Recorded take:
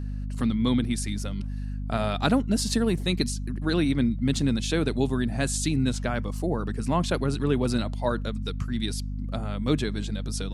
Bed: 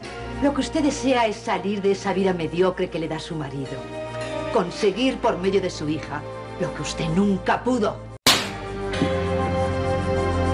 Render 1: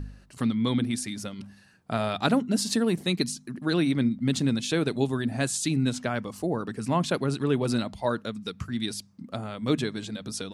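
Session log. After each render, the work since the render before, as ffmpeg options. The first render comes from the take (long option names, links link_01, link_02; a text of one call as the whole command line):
ffmpeg -i in.wav -af "bandreject=frequency=50:width_type=h:width=4,bandreject=frequency=100:width_type=h:width=4,bandreject=frequency=150:width_type=h:width=4,bandreject=frequency=200:width_type=h:width=4,bandreject=frequency=250:width_type=h:width=4" out.wav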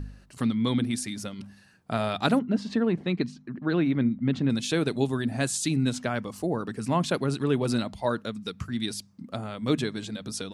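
ffmpeg -i in.wav -filter_complex "[0:a]asettb=1/sr,asplit=3[link_01][link_02][link_03];[link_01]atrim=end=2.394[link_04];[link_02]atrim=start=2.39:end=4.5,asetpts=PTS-STARTPTS,afade=type=in:duration=0.004:curve=qsin,afade=type=out:start_time=2.106:duration=0.004:curve=qsin,lowpass=2300[link_05];[link_03]atrim=start=4.496[link_06];[link_04][link_05]acrossfade=duration=0.004:curve1=hsin:curve2=qsin[link_07];[link_07][link_06]acrossfade=duration=0.004:curve1=qsin:curve2=hsin" out.wav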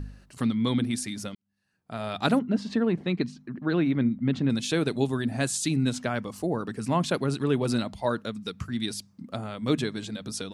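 ffmpeg -i in.wav -filter_complex "[0:a]asplit=2[link_01][link_02];[link_01]atrim=end=1.35,asetpts=PTS-STARTPTS,afade=type=out:start_time=1.346:duration=0.004:curve=hsin[link_03];[link_02]atrim=start=1.35,asetpts=PTS-STARTPTS,afade=type=in:duration=0.93:curve=qua[link_04];[link_03][link_04]concat=n=2:v=0:a=1" out.wav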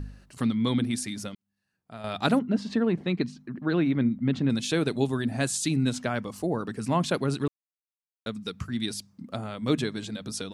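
ffmpeg -i in.wav -filter_complex "[0:a]asplit=4[link_01][link_02][link_03][link_04];[link_01]atrim=end=2.04,asetpts=PTS-STARTPTS,afade=type=out:start_time=1.17:duration=0.87:silence=0.398107[link_05];[link_02]atrim=start=2.04:end=7.48,asetpts=PTS-STARTPTS,afade=type=in:duration=0.004:curve=hsin:silence=0.398107,afade=type=out:start_time=5.436:duration=0.004:curve=hsin[link_06];[link_03]atrim=start=7.48:end=8.26,asetpts=PTS-STARTPTS,volume=0[link_07];[link_04]atrim=start=8.26,asetpts=PTS-STARTPTS,afade=type=in:duration=0.004:curve=hsin[link_08];[link_05][link_06][link_07][link_08]concat=n=4:v=0:a=1" out.wav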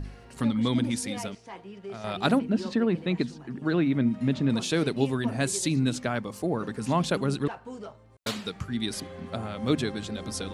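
ffmpeg -i in.wav -i bed.wav -filter_complex "[1:a]volume=-19dB[link_01];[0:a][link_01]amix=inputs=2:normalize=0" out.wav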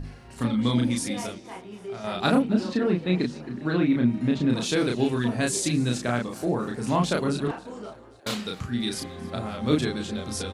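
ffmpeg -i in.wav -filter_complex "[0:a]asplit=2[link_01][link_02];[link_02]adelay=33,volume=-2dB[link_03];[link_01][link_03]amix=inputs=2:normalize=0,asplit=6[link_04][link_05][link_06][link_07][link_08][link_09];[link_05]adelay=268,afreqshift=44,volume=-21dB[link_10];[link_06]adelay=536,afreqshift=88,volume=-25.6dB[link_11];[link_07]adelay=804,afreqshift=132,volume=-30.2dB[link_12];[link_08]adelay=1072,afreqshift=176,volume=-34.7dB[link_13];[link_09]adelay=1340,afreqshift=220,volume=-39.3dB[link_14];[link_04][link_10][link_11][link_12][link_13][link_14]amix=inputs=6:normalize=0" out.wav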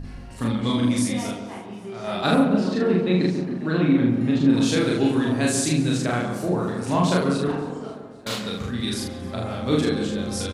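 ffmpeg -i in.wav -filter_complex "[0:a]asplit=2[link_01][link_02];[link_02]adelay=44,volume=-2dB[link_03];[link_01][link_03]amix=inputs=2:normalize=0,asplit=2[link_04][link_05];[link_05]adelay=139,lowpass=frequency=1000:poles=1,volume=-4.5dB,asplit=2[link_06][link_07];[link_07]adelay=139,lowpass=frequency=1000:poles=1,volume=0.54,asplit=2[link_08][link_09];[link_09]adelay=139,lowpass=frequency=1000:poles=1,volume=0.54,asplit=2[link_10][link_11];[link_11]adelay=139,lowpass=frequency=1000:poles=1,volume=0.54,asplit=2[link_12][link_13];[link_13]adelay=139,lowpass=frequency=1000:poles=1,volume=0.54,asplit=2[link_14][link_15];[link_15]adelay=139,lowpass=frequency=1000:poles=1,volume=0.54,asplit=2[link_16][link_17];[link_17]adelay=139,lowpass=frequency=1000:poles=1,volume=0.54[link_18];[link_06][link_08][link_10][link_12][link_14][link_16][link_18]amix=inputs=7:normalize=0[link_19];[link_04][link_19]amix=inputs=2:normalize=0" out.wav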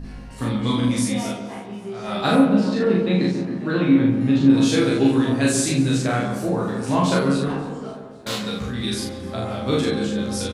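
ffmpeg -i in.wav -filter_complex "[0:a]asplit=2[link_01][link_02];[link_02]adelay=15,volume=-3.5dB[link_03];[link_01][link_03]amix=inputs=2:normalize=0" out.wav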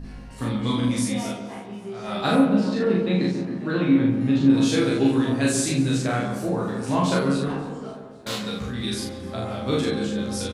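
ffmpeg -i in.wav -af "volume=-2.5dB" out.wav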